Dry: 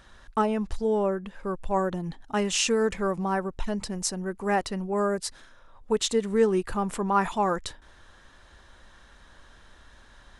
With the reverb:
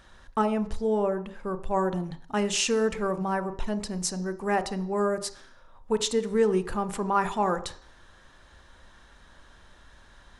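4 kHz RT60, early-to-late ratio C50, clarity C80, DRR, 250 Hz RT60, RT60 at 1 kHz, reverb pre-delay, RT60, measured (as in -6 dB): 0.60 s, 14.5 dB, 18.0 dB, 11.0 dB, 0.50 s, 0.55 s, 30 ms, 0.55 s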